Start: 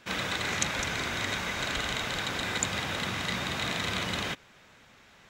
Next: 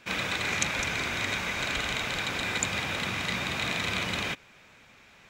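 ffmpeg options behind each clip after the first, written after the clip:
-af "equalizer=f=2.4k:t=o:w=0.21:g=7.5"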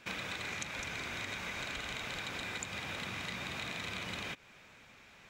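-af "acompressor=threshold=-35dB:ratio=6,volume=-2.5dB"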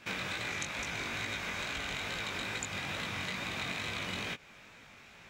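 -af "flanger=delay=17.5:depth=4.3:speed=2.3,volume=6dB"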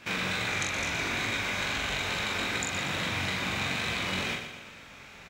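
-filter_complex "[0:a]asplit=2[a][b];[b]adelay=43,volume=-3dB[c];[a][c]amix=inputs=2:normalize=0,aecho=1:1:119|238|357|476|595|714:0.376|0.184|0.0902|0.0442|0.0217|0.0106,volume=4dB"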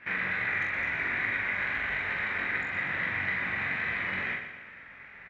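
-af "lowpass=f=1.9k:t=q:w=6.4,volume=-7dB"

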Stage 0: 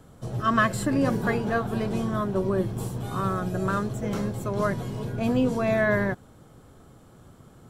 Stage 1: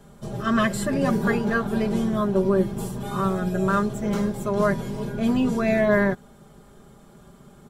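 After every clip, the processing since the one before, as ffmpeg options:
-af "aecho=1:1:5:0.91"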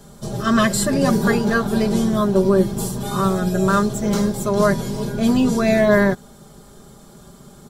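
-af "highshelf=f=3.4k:t=q:w=1.5:g=6,volume=5dB"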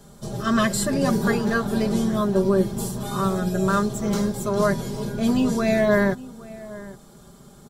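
-filter_complex "[0:a]asplit=2[a][b];[b]adelay=816.3,volume=-18dB,highshelf=f=4k:g=-18.4[c];[a][c]amix=inputs=2:normalize=0,volume=-4dB"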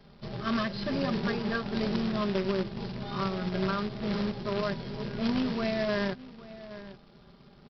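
-af "alimiter=limit=-12.5dB:level=0:latency=1:release=302,aresample=11025,acrusher=bits=2:mode=log:mix=0:aa=0.000001,aresample=44100,volume=-7.5dB"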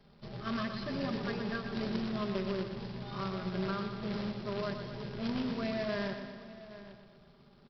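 -af "aecho=1:1:121|242|363|484|605|726|847:0.398|0.235|0.139|0.0818|0.0482|0.0285|0.0168,volume=-6.5dB"

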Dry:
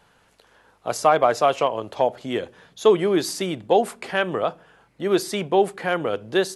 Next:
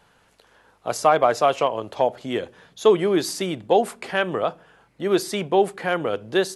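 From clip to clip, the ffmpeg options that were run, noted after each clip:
-af anull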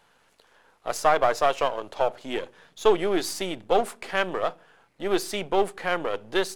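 -af "aeval=exprs='if(lt(val(0),0),0.447*val(0),val(0))':c=same,equalizer=f=67:w=0.33:g=-8"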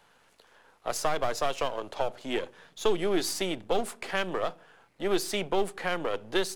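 -filter_complex "[0:a]acrossover=split=300|3000[a][b][c];[b]acompressor=threshold=-27dB:ratio=6[d];[a][d][c]amix=inputs=3:normalize=0"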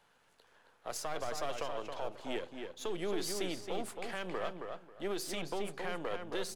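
-filter_complex "[0:a]alimiter=limit=-21.5dB:level=0:latency=1:release=36,asplit=2[a][b];[b]adelay=271,lowpass=f=3.3k:p=1,volume=-5dB,asplit=2[c][d];[d]adelay=271,lowpass=f=3.3k:p=1,volume=0.21,asplit=2[e][f];[f]adelay=271,lowpass=f=3.3k:p=1,volume=0.21[g];[a][c][e][g]amix=inputs=4:normalize=0,volume=-7dB"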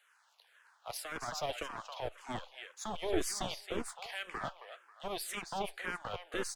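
-filter_complex "[0:a]acrossover=split=750[a][b];[a]acrusher=bits=4:mix=0:aa=0.5[c];[c][b]amix=inputs=2:normalize=0,asplit=2[d][e];[e]afreqshift=-1.9[f];[d][f]amix=inputs=2:normalize=1,volume=4.5dB"

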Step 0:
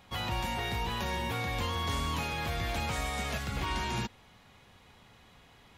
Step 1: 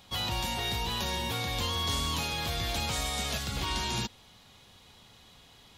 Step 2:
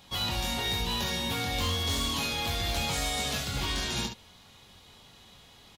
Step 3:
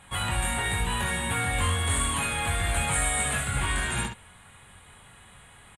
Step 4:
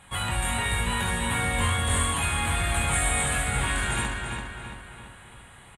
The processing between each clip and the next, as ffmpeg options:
-af "highshelf=f=2.8k:t=q:w=1.5:g=6.5"
-af "aecho=1:1:22|69:0.562|0.447,aeval=exprs='0.0794*(abs(mod(val(0)/0.0794+3,4)-2)-1)':c=same"
-af "firequalizer=gain_entry='entry(120,0);entry(250,-7);entry(1600,5);entry(5400,-25);entry(8600,12);entry(14000,-19)':delay=0.05:min_phase=1,volume=5.5dB"
-filter_complex "[0:a]asplit=2[a][b];[b]adelay=337,lowpass=f=4.5k:p=1,volume=-4dB,asplit=2[c][d];[d]adelay=337,lowpass=f=4.5k:p=1,volume=0.51,asplit=2[e][f];[f]adelay=337,lowpass=f=4.5k:p=1,volume=0.51,asplit=2[g][h];[h]adelay=337,lowpass=f=4.5k:p=1,volume=0.51,asplit=2[i][j];[j]adelay=337,lowpass=f=4.5k:p=1,volume=0.51,asplit=2[k][l];[l]adelay=337,lowpass=f=4.5k:p=1,volume=0.51,asplit=2[m][n];[n]adelay=337,lowpass=f=4.5k:p=1,volume=0.51[o];[a][c][e][g][i][k][m][o]amix=inputs=8:normalize=0"

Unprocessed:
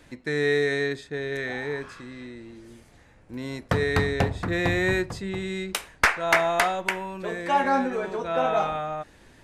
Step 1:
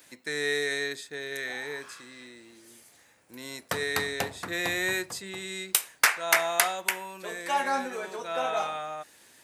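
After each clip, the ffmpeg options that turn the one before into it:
-af "highpass=74,aemphasis=mode=production:type=riaa,volume=-4.5dB"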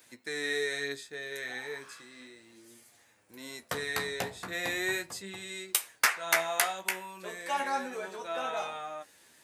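-af "flanger=delay=8.3:depth=8.3:regen=33:speed=0.35:shape=sinusoidal"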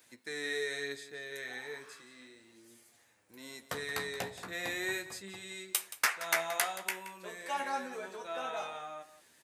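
-af "aecho=1:1:175:0.178,volume=-4dB"

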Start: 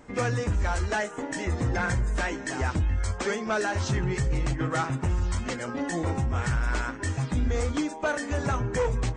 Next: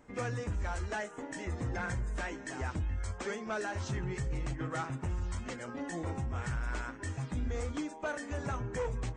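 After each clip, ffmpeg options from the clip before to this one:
-af "equalizer=f=4.6k:t=o:w=0.77:g=-2.5,volume=-9dB"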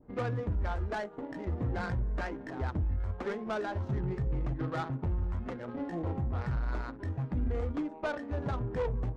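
-af "adynamicsmooth=sensitivity=4.5:basefreq=690,adynamicequalizer=threshold=0.00224:dfrequency=2000:dqfactor=0.75:tfrequency=2000:tqfactor=0.75:attack=5:release=100:ratio=0.375:range=2.5:mode=cutabove:tftype=bell,volume=3.5dB"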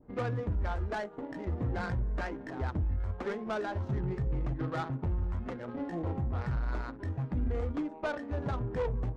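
-af anull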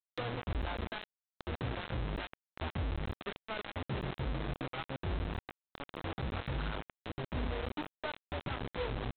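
-af "aresample=8000,acrusher=bits=4:mix=0:aa=0.000001,aresample=44100,acompressor=mode=upward:threshold=-35dB:ratio=2.5,volume=-7.5dB"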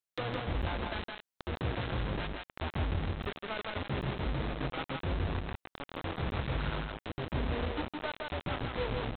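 -af "aecho=1:1:164:0.668,volume=2dB"

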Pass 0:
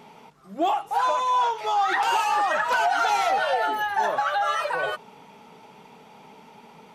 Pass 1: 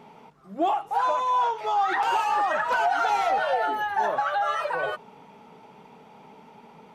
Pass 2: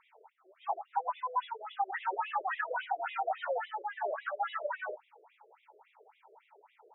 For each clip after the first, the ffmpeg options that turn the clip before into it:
-af "highshelf=f=2.5k:g=-8.5"
-af "afftfilt=real='re*between(b*sr/1024,450*pow(2800/450,0.5+0.5*sin(2*PI*3.6*pts/sr))/1.41,450*pow(2800/450,0.5+0.5*sin(2*PI*3.6*pts/sr))*1.41)':imag='im*between(b*sr/1024,450*pow(2800/450,0.5+0.5*sin(2*PI*3.6*pts/sr))/1.41,450*pow(2800/450,0.5+0.5*sin(2*PI*3.6*pts/sr))*1.41)':win_size=1024:overlap=0.75,volume=-5dB"

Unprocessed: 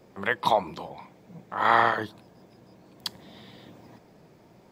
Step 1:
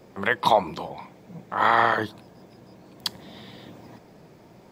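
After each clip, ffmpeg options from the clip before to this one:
-af "alimiter=level_in=9.5dB:limit=-1dB:release=50:level=0:latency=1,volume=-5dB"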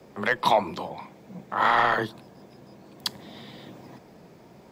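-af "asoftclip=type=tanh:threshold=-9.5dB,afreqshift=13"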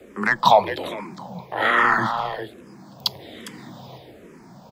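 -filter_complex "[0:a]aecho=1:1:406:0.335,asplit=2[a][b];[b]afreqshift=-1.2[c];[a][c]amix=inputs=2:normalize=1,volume=7dB"

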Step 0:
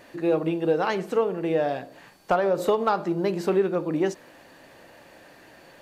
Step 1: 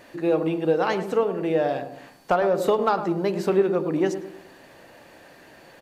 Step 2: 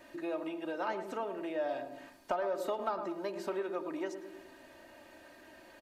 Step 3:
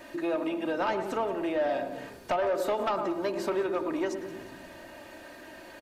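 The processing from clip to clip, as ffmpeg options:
-filter_complex "[0:a]asplit=2[a][b];[b]adelay=106,lowpass=f=950:p=1,volume=-8.5dB,asplit=2[c][d];[d]adelay=106,lowpass=f=950:p=1,volume=0.47,asplit=2[e][f];[f]adelay=106,lowpass=f=950:p=1,volume=0.47,asplit=2[g][h];[h]adelay=106,lowpass=f=950:p=1,volume=0.47,asplit=2[i][j];[j]adelay=106,lowpass=f=950:p=1,volume=0.47[k];[a][c][e][g][i][k]amix=inputs=6:normalize=0,volume=1dB"
-filter_complex "[0:a]aecho=1:1:3.2:0.7,acrossover=split=590|1500[a][b][c];[a]acompressor=threshold=-34dB:ratio=4[d];[b]acompressor=threshold=-24dB:ratio=4[e];[c]acompressor=threshold=-42dB:ratio=4[f];[d][e][f]amix=inputs=3:normalize=0,volume=-8.5dB"
-filter_complex "[0:a]asplit=2[a][b];[b]aeval=exprs='0.106*sin(PI/2*3.16*val(0)/0.106)':c=same,volume=-9.5dB[c];[a][c]amix=inputs=2:normalize=0,asplit=6[d][e][f][g][h][i];[e]adelay=177,afreqshift=-66,volume=-17.5dB[j];[f]adelay=354,afreqshift=-132,volume=-22.7dB[k];[g]adelay=531,afreqshift=-198,volume=-27.9dB[l];[h]adelay=708,afreqshift=-264,volume=-33.1dB[m];[i]adelay=885,afreqshift=-330,volume=-38.3dB[n];[d][j][k][l][m][n]amix=inputs=6:normalize=0"

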